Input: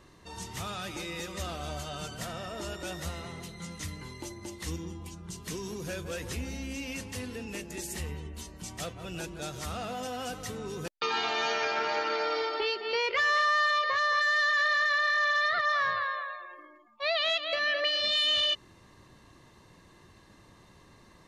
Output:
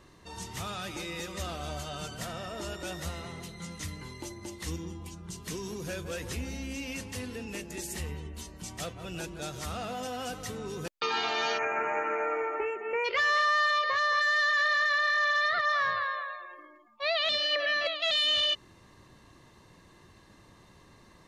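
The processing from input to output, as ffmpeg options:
ffmpeg -i in.wav -filter_complex "[0:a]asplit=3[link_01][link_02][link_03];[link_01]afade=type=out:start_time=11.57:duration=0.02[link_04];[link_02]asuperstop=centerf=4200:order=12:qfactor=1,afade=type=in:start_time=11.57:duration=0.02,afade=type=out:start_time=13.04:duration=0.02[link_05];[link_03]afade=type=in:start_time=13.04:duration=0.02[link_06];[link_04][link_05][link_06]amix=inputs=3:normalize=0,asplit=3[link_07][link_08][link_09];[link_07]atrim=end=17.292[link_10];[link_08]atrim=start=17.288:end=18.112,asetpts=PTS-STARTPTS,areverse[link_11];[link_09]atrim=start=18.108[link_12];[link_10][link_11]acrossfade=duration=0.004:curve1=hsin:curve2=hsin[link_13];[link_13][link_12]acrossfade=duration=0.004:curve1=hsin:curve2=hsin" out.wav

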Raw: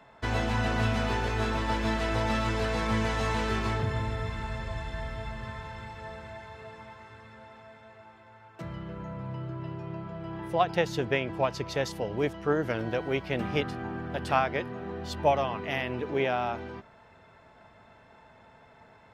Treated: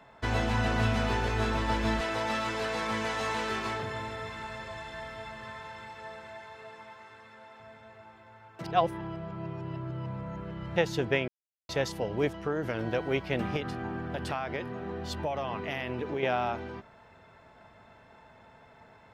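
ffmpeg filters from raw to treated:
ffmpeg -i in.wav -filter_complex "[0:a]asettb=1/sr,asplit=3[link_01][link_02][link_03];[link_01]atrim=end=2.014[link_04];[link_02]atrim=start=2.01:end=7.6,asetpts=PTS-STARTPTS,afade=type=in:duration=0.004:curve=qsin,afade=type=out:start_time=5.586:duration=0.004:curve=qsin,highpass=frequency=400:poles=1[link_05];[link_03]atrim=start=7.596[link_06];[link_04][link_05]acrossfade=duration=0.004:curve1=hsin:curve2=qsin[link_07];[link_07][link_06]acrossfade=duration=0.004:curve1=qsin:curve2=hsin,asettb=1/sr,asplit=3[link_08][link_09][link_10];[link_08]atrim=end=12.354[link_11];[link_09]atrim=start=12.35:end=12.83,asetpts=PTS-STARTPTS,afade=type=in:duration=0.004:curve=qsin,afade=type=out:start_time=0.476:duration=0.004:curve=qsin,acompressor=threshold=-26dB:ratio=5:attack=3.2:release=140:knee=1:detection=peak[link_12];[link_10]atrim=start=12.826[link_13];[link_11][link_12]acrossfade=duration=0.004:curve1=hsin:curve2=qsin[link_14];[link_14][link_13]acrossfade=duration=0.004:curve1=qsin:curve2=hsin,asettb=1/sr,asplit=3[link_15][link_16][link_17];[link_15]atrim=end=13.564[link_18];[link_16]atrim=start=13.56:end=16.23,asetpts=PTS-STARTPTS,afade=type=in:duration=0.004:curve=qsin,afade=type=out:start_time=2.666:duration=0.004:curve=qsin,acompressor=threshold=-28dB:ratio=6:attack=3.2:release=140:knee=1:detection=peak[link_19];[link_17]atrim=start=16.226[link_20];[link_18][link_19]acrossfade=duration=0.004:curve1=hsin:curve2=qsin[link_21];[link_21][link_20]acrossfade=duration=0.004:curve1=qsin:curve2=hsin,asplit=5[link_22][link_23][link_24][link_25][link_26];[link_22]atrim=end=8.642[link_27];[link_23]atrim=start=8.638:end=10.762,asetpts=PTS-STARTPTS,areverse[link_28];[link_24]atrim=start=10.758:end=11.28,asetpts=PTS-STARTPTS,afade=type=out:start_time=0.518:duration=0.004:curve=hsin[link_29];[link_25]atrim=start=11.28:end=11.69,asetpts=PTS-STARTPTS,volume=0[link_30];[link_26]atrim=start=11.69,asetpts=PTS-STARTPTS,afade=type=in:duration=0.004:curve=hsin[link_31];[link_27][link_28]acrossfade=duration=0.004:curve1=hsin:curve2=hsin[link_32];[link_29][link_30][link_31]concat=n=3:v=0:a=1[link_33];[link_32][link_33]acrossfade=duration=0.004:curve1=hsin:curve2=hsin" out.wav

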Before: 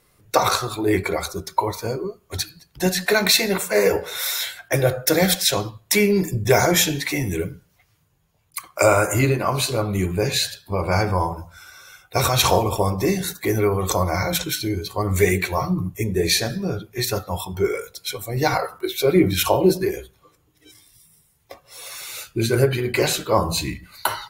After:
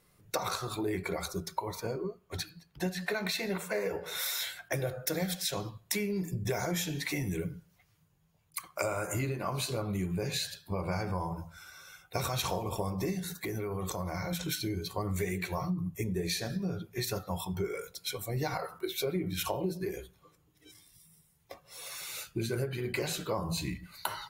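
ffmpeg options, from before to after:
ffmpeg -i in.wav -filter_complex "[0:a]asettb=1/sr,asplit=3[link_01][link_02][link_03];[link_01]atrim=end=1.804[link_04];[link_02]atrim=start=1.8:end=4.06,asetpts=PTS-STARTPTS,afade=type=in:duration=0.004:curve=qsin,afade=type=out:start_time=2.256:duration=0.004:curve=qsin,bass=frequency=250:gain=-3,treble=frequency=4000:gain=-7[link_05];[link_03]atrim=start=4.056[link_06];[link_04][link_05]acrossfade=duration=0.004:curve1=hsin:curve2=qsin[link_07];[link_07][link_06]acrossfade=duration=0.004:curve1=qsin:curve2=hsin,asettb=1/sr,asplit=3[link_08][link_09][link_10];[link_08]atrim=end=13.194[link_11];[link_09]atrim=start=13.19:end=14.48,asetpts=PTS-STARTPTS,afade=type=in:duration=0.004:curve=qsin,afade=type=out:start_time=1.286:duration=0.004:curve=qsin,acompressor=threshold=-25dB:ratio=6:attack=3.2:release=140:knee=1:detection=peak[link_12];[link_10]atrim=start=14.476[link_13];[link_11][link_12]acrossfade=duration=0.004:curve1=hsin:curve2=qsin[link_14];[link_14][link_13]acrossfade=duration=0.004:curve1=qsin:curve2=hsin,equalizer=frequency=170:width=4.1:gain=8.5,acompressor=threshold=-23dB:ratio=6,volume=-7dB" out.wav

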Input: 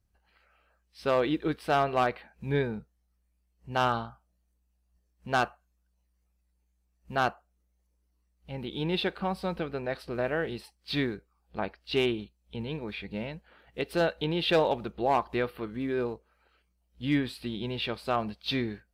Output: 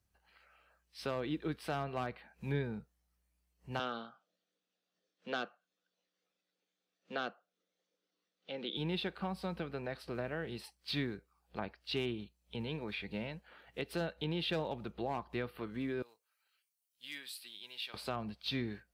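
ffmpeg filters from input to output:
ffmpeg -i in.wav -filter_complex "[0:a]asettb=1/sr,asplit=3[link_01][link_02][link_03];[link_01]atrim=end=3.794[link_04];[link_02]atrim=start=3.79:end=8.77,asetpts=PTS-STARTPTS,afade=type=in:duration=0.004:curve=qsin,afade=type=out:start_time=4.976:duration=0.004:curve=qsin,highpass=frequency=210:width=0.5412,highpass=frequency=210:width=1.3066,equalizer=frequency=500:width_type=q:width=4:gain=8,equalizer=frequency=930:width_type=q:width=4:gain=-8,equalizer=frequency=1400:width_type=q:width=4:gain=4,equalizer=frequency=3500:width_type=q:width=4:gain=10,lowpass=frequency=6200:width=0.5412,lowpass=frequency=6200:width=1.3066[link_05];[link_03]atrim=start=8.766[link_06];[link_04][link_05]acrossfade=duration=0.004:curve1=hsin:curve2=qsin[link_07];[link_07][link_06]acrossfade=duration=0.004:curve1=qsin:curve2=hsin,asettb=1/sr,asplit=3[link_08][link_09][link_10];[link_08]atrim=end=16.024[link_11];[link_09]atrim=start=16.02:end=17.94,asetpts=PTS-STARTPTS,afade=type=in:duration=0.004:curve=qsin,afade=type=out:start_time=1.916:duration=0.004:curve=qsin,aderivative[link_12];[link_10]atrim=start=17.936[link_13];[link_11][link_12]acrossfade=duration=0.004:curve1=hsin:curve2=qsin[link_14];[link_14][link_13]acrossfade=duration=0.004:curve1=qsin:curve2=hsin,highpass=49,acrossover=split=250[link_15][link_16];[link_16]acompressor=threshold=-39dB:ratio=3[link_17];[link_15][link_17]amix=inputs=2:normalize=0,lowshelf=frequency=500:gain=-6,volume=1dB" out.wav

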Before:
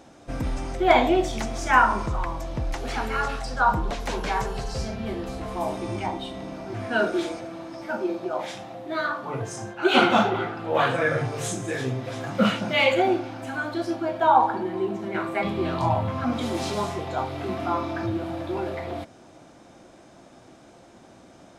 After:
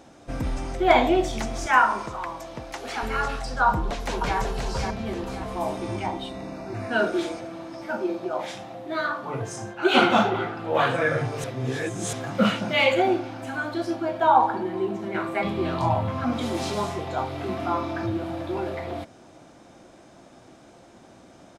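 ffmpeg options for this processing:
ffmpeg -i in.wav -filter_complex "[0:a]asettb=1/sr,asplit=3[link_01][link_02][link_03];[link_01]atrim=end=1.664[link_04];[link_02]atrim=start=1.66:end=3.03,asetpts=PTS-STARTPTS,afade=type=in:duration=0.004:curve=qsin,afade=type=out:start_time=1.366:duration=0.004:curve=qsin,highpass=frequency=390:poles=1[link_05];[link_03]atrim=start=3.026[link_06];[link_04][link_05]acrossfade=duration=0.004:curve1=hsin:curve2=qsin[link_07];[link_07][link_06]acrossfade=duration=0.004:curve1=qsin:curve2=hsin,asplit=2[link_08][link_09];[link_09]afade=type=in:start_time=3.68:duration=0.01,afade=type=out:start_time=4.37:duration=0.01,aecho=0:1:530|1060|1590|2120|2650:0.530884|0.212354|0.0849415|0.0339766|0.0135906[link_10];[link_08][link_10]amix=inputs=2:normalize=0,asettb=1/sr,asplit=3[link_11][link_12][link_13];[link_11]atrim=end=6.294[link_14];[link_12]atrim=start=6.29:end=6.91,asetpts=PTS-STARTPTS,afade=type=in:duration=0.004:curve=qsin,afade=type=out:start_time=0.616:duration=0.004:curve=qsin,asuperstop=centerf=3200:order=4:qfactor=5.1[link_15];[link_13]atrim=start=6.906[link_16];[link_14][link_15]acrossfade=duration=0.004:curve1=hsin:curve2=qsin[link_17];[link_17][link_16]acrossfade=duration=0.004:curve1=qsin:curve2=hsin,asplit=3[link_18][link_19][link_20];[link_18]atrim=end=11.442[link_21];[link_19]atrim=start=11.438:end=12.132,asetpts=PTS-STARTPTS,areverse[link_22];[link_20]atrim=start=12.128[link_23];[link_21][link_22]acrossfade=duration=0.004:curve1=hsin:curve2=hsin[link_24];[link_24][link_23]acrossfade=duration=0.004:curve1=hsin:curve2=hsin" out.wav

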